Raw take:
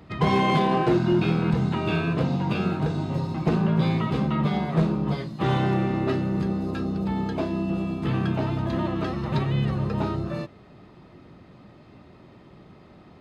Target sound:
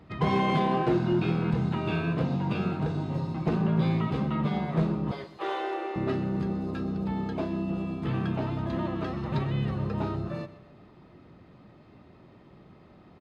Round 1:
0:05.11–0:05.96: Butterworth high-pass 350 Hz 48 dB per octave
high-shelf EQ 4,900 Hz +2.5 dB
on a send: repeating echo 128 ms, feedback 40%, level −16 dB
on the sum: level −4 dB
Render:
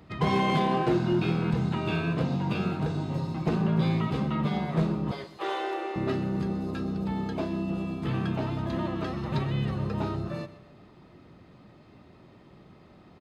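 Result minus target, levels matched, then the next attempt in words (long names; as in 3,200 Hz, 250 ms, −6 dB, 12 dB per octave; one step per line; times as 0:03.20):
8,000 Hz band +6.0 dB
0:05.11–0:05.96: Butterworth high-pass 350 Hz 48 dB per octave
high-shelf EQ 4,900 Hz −6.5 dB
on a send: repeating echo 128 ms, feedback 40%, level −16 dB
on the sum: level −4 dB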